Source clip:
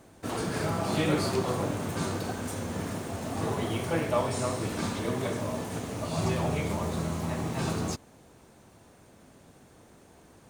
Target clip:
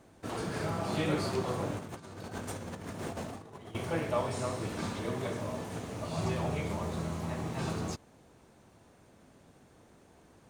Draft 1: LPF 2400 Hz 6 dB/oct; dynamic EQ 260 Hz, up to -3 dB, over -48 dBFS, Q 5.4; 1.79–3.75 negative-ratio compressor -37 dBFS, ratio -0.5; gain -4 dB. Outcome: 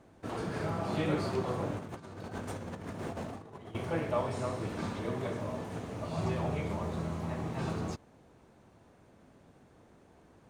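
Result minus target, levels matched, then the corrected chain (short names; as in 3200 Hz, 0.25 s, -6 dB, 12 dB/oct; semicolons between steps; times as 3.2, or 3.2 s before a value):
8000 Hz band -6.5 dB
LPF 7000 Hz 6 dB/oct; dynamic EQ 260 Hz, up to -3 dB, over -48 dBFS, Q 5.4; 1.79–3.75 negative-ratio compressor -37 dBFS, ratio -0.5; gain -4 dB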